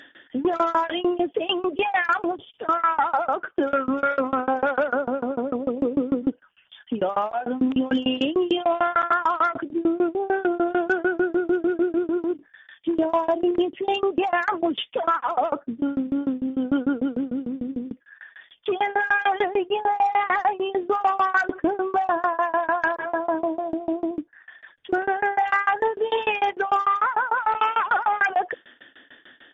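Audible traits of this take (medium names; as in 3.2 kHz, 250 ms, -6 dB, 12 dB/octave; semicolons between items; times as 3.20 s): tremolo saw down 6.7 Hz, depth 100%; MP3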